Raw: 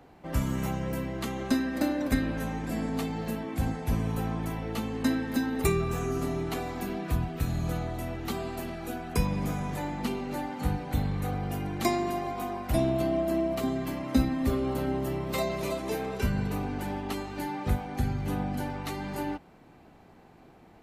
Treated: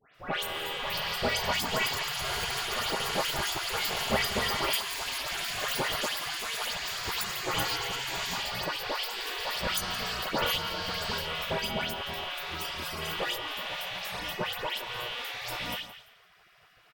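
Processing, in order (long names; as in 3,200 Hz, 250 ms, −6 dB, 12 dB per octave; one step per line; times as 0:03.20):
loose part that buzzes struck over −36 dBFS, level −25 dBFS
output level in coarse steps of 13 dB
on a send: repeating echo 209 ms, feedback 27%, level −15 dB
on the sum: delay with pitch and tempo change per echo 787 ms, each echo +7 semitones, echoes 3
comb filter 4.3 ms, depth 50%
in parallel at +1 dB: downward compressor, threshold −42 dBFS, peak gain reduction 19 dB
on the sum: gate on every frequency bin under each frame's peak −15 dB weak
speed change +23%
parametric band 7,900 Hz −6 dB 1.3 octaves
all-pass dispersion highs, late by 149 ms, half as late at 2,300 Hz
level +9 dB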